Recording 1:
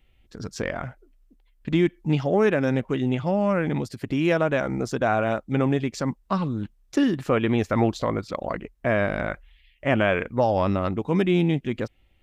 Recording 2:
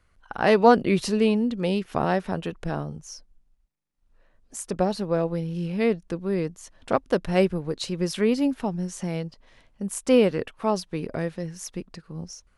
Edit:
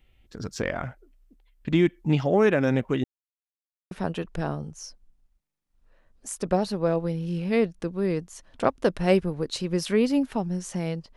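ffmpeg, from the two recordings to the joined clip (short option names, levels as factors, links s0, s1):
-filter_complex "[0:a]apad=whole_dur=11.16,atrim=end=11.16,asplit=2[s0][s1];[s0]atrim=end=3.04,asetpts=PTS-STARTPTS,afade=t=out:st=3.036:d=0.004:c=hsin[s2];[s1]atrim=start=3.04:end=3.91,asetpts=PTS-STARTPTS,volume=0[s3];[1:a]atrim=start=2.19:end=9.44,asetpts=PTS-STARTPTS,afade=t=in:d=0.004:c=hsin[s4];[s2][s3][s4]concat=n=3:v=0:a=1"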